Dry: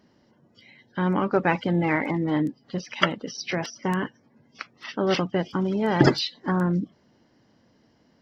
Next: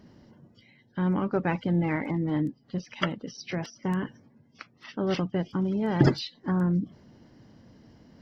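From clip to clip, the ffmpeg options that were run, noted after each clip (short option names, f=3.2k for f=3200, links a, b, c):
-af "areverse,acompressor=mode=upward:threshold=-40dB:ratio=2.5,areverse,lowshelf=f=230:g=11.5,volume=-8dB"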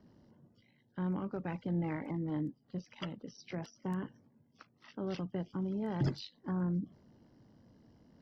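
-filter_complex "[0:a]acrossover=split=180|1900[a][b][c];[b]alimiter=limit=-20.5dB:level=0:latency=1:release=163[d];[c]aeval=exprs='val(0)*sin(2*PI*50*n/s)':c=same[e];[a][d][e]amix=inputs=3:normalize=0,volume=-8.5dB"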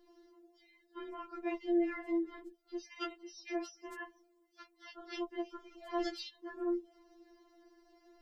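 -filter_complex "[0:a]acrossover=split=210|370|1300[a][b][c][d];[b]acompressor=threshold=-52dB:ratio=16[e];[a][e][c][d]amix=inputs=4:normalize=0,afftfilt=real='re*4*eq(mod(b,16),0)':imag='im*4*eq(mod(b,16),0)':win_size=2048:overlap=0.75,volume=7dB"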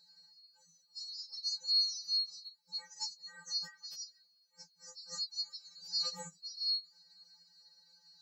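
-af "afftfilt=real='real(if(lt(b,736),b+184*(1-2*mod(floor(b/184),2)),b),0)':imag='imag(if(lt(b,736),b+184*(1-2*mod(floor(b/184),2)),b),0)':win_size=2048:overlap=0.75"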